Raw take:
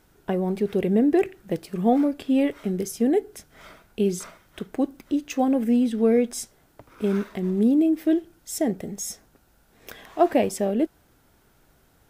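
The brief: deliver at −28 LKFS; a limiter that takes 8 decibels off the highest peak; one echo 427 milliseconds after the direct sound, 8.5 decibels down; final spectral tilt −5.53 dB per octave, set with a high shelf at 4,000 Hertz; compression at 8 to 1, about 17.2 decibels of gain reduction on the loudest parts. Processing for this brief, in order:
high-shelf EQ 4,000 Hz −9 dB
downward compressor 8 to 1, threshold −33 dBFS
brickwall limiter −29 dBFS
single-tap delay 427 ms −8.5 dB
level +11 dB

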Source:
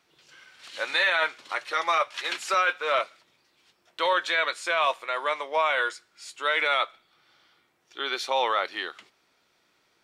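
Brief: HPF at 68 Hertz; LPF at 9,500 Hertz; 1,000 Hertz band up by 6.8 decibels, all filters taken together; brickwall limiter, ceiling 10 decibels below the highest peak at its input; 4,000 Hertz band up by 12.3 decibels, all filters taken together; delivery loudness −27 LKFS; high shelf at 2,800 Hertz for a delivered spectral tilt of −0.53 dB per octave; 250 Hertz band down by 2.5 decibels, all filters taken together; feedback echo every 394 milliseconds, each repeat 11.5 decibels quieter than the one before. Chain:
high-pass filter 68 Hz
low-pass filter 9,500 Hz
parametric band 250 Hz −5.5 dB
parametric band 1,000 Hz +7 dB
high-shelf EQ 2,800 Hz +7 dB
parametric band 4,000 Hz +9 dB
brickwall limiter −13 dBFS
repeating echo 394 ms, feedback 27%, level −11.5 dB
level −3.5 dB

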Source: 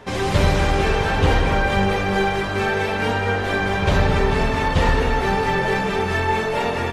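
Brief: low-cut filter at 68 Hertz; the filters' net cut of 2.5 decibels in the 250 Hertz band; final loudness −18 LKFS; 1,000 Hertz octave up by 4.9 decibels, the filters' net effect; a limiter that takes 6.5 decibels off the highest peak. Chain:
high-pass filter 68 Hz
parametric band 250 Hz −4 dB
parametric band 1,000 Hz +6.5 dB
level +2.5 dB
brickwall limiter −9 dBFS

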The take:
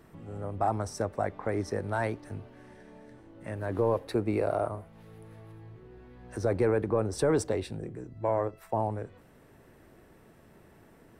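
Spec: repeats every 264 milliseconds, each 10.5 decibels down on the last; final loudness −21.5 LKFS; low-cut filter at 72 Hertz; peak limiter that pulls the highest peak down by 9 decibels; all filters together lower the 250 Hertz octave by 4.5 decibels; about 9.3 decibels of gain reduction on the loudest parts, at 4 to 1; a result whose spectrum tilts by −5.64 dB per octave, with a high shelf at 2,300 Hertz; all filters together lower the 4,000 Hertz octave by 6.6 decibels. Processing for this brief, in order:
high-pass filter 72 Hz
parametric band 250 Hz −6.5 dB
high-shelf EQ 2,300 Hz −3.5 dB
parametric band 4,000 Hz −5 dB
downward compressor 4 to 1, threshold −35 dBFS
brickwall limiter −32 dBFS
repeating echo 264 ms, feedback 30%, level −10.5 dB
level +22.5 dB

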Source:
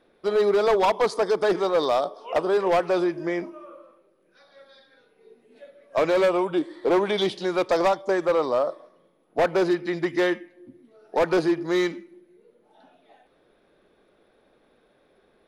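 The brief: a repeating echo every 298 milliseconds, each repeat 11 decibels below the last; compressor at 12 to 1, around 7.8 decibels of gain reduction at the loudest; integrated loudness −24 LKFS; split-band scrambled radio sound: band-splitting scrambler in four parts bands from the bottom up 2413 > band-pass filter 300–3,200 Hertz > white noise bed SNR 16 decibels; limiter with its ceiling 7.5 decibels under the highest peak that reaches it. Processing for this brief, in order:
downward compressor 12 to 1, threshold −25 dBFS
brickwall limiter −23.5 dBFS
repeating echo 298 ms, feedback 28%, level −11 dB
band-splitting scrambler in four parts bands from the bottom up 2413
band-pass filter 300–3,200 Hz
white noise bed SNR 16 dB
level +7.5 dB

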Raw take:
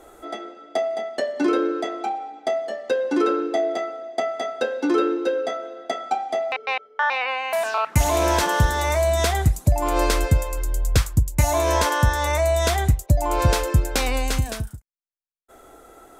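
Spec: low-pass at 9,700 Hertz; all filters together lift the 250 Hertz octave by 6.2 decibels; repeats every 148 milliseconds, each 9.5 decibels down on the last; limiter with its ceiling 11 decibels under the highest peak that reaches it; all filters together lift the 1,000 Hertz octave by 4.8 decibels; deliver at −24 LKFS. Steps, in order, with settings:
low-pass filter 9,700 Hz
parametric band 250 Hz +8.5 dB
parametric band 1,000 Hz +5.5 dB
brickwall limiter −14 dBFS
repeating echo 148 ms, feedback 33%, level −9.5 dB
level −0.5 dB

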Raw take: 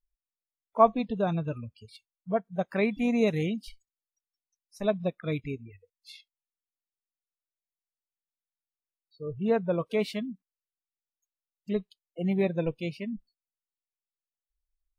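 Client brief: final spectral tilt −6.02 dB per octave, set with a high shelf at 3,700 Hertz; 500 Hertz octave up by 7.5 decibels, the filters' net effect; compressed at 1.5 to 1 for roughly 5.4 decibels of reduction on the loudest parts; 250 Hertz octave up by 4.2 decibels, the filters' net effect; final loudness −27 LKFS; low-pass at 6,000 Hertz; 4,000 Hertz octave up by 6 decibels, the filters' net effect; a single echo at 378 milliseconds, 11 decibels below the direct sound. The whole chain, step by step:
low-pass filter 6,000 Hz
parametric band 250 Hz +3.5 dB
parametric band 500 Hz +8.5 dB
high-shelf EQ 3,700 Hz +3.5 dB
parametric band 4,000 Hz +5.5 dB
downward compressor 1.5 to 1, threshold −24 dBFS
single-tap delay 378 ms −11 dB

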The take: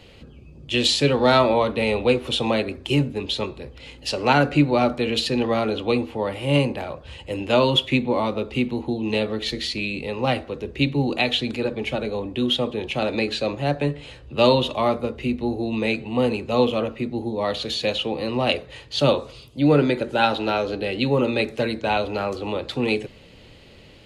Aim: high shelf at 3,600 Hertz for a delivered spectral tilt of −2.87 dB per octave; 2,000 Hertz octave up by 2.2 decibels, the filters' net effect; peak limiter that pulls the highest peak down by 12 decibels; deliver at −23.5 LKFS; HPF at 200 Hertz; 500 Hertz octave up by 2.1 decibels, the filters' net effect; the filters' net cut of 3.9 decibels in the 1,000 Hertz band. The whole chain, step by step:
high-pass filter 200 Hz
parametric band 500 Hz +4.5 dB
parametric band 1,000 Hz −8.5 dB
parametric band 2,000 Hz +7 dB
high-shelf EQ 3,600 Hz −5.5 dB
level +2.5 dB
brickwall limiter −13.5 dBFS

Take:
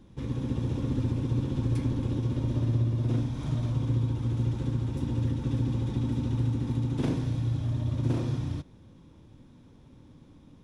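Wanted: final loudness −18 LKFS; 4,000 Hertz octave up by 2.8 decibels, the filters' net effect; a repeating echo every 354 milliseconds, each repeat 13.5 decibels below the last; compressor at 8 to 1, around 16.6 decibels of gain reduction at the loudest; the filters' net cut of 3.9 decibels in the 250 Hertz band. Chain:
parametric band 250 Hz −5 dB
parametric band 4,000 Hz +3.5 dB
downward compressor 8 to 1, threshold −42 dBFS
repeating echo 354 ms, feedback 21%, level −13.5 dB
level +27.5 dB

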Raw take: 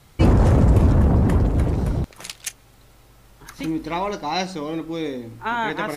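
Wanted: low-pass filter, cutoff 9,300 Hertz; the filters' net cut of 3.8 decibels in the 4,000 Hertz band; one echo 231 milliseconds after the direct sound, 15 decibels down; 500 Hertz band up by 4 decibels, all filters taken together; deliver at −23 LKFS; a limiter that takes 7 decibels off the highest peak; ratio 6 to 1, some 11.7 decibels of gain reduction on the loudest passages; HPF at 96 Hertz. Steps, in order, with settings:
high-pass filter 96 Hz
low-pass filter 9,300 Hz
parametric band 500 Hz +5 dB
parametric band 4,000 Hz −4.5 dB
downward compressor 6 to 1, threshold −25 dBFS
brickwall limiter −22 dBFS
single-tap delay 231 ms −15 dB
level +8.5 dB

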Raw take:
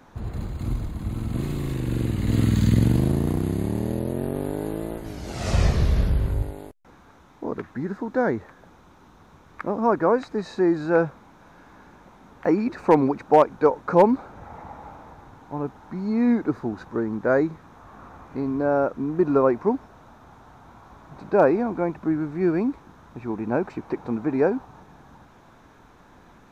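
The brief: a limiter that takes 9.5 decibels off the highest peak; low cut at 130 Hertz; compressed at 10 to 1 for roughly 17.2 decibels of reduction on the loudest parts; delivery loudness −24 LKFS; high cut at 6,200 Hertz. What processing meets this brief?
high-pass filter 130 Hz
low-pass filter 6,200 Hz
downward compressor 10 to 1, threshold −28 dBFS
level +11.5 dB
brickwall limiter −12 dBFS

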